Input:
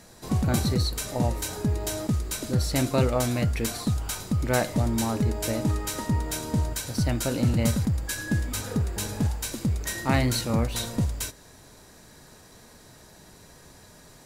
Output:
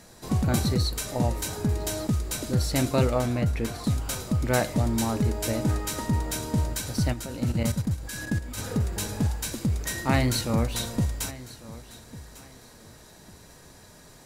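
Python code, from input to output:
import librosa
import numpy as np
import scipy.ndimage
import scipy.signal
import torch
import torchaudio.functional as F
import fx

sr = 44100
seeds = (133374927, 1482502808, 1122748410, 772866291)

y = fx.high_shelf(x, sr, hz=3200.0, db=-10.5, at=(3.2, 3.84))
y = fx.level_steps(y, sr, step_db=12, at=(7.12, 8.57), fade=0.02)
y = fx.echo_feedback(y, sr, ms=1149, feedback_pct=25, wet_db=-18.0)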